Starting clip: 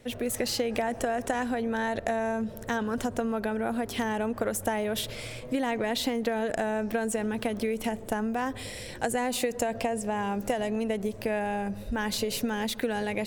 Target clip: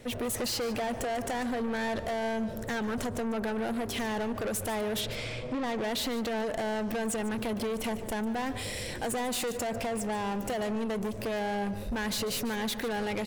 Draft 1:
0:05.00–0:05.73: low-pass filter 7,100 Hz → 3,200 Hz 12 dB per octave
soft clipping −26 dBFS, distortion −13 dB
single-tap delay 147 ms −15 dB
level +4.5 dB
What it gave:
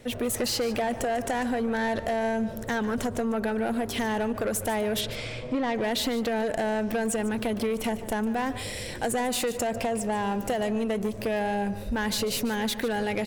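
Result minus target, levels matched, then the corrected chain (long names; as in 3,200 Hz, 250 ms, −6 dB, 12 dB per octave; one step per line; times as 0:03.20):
soft clipping: distortion −6 dB
0:05.00–0:05.73: low-pass filter 7,100 Hz → 3,200 Hz 12 dB per octave
soft clipping −33.5 dBFS, distortion −7 dB
single-tap delay 147 ms −15 dB
level +4.5 dB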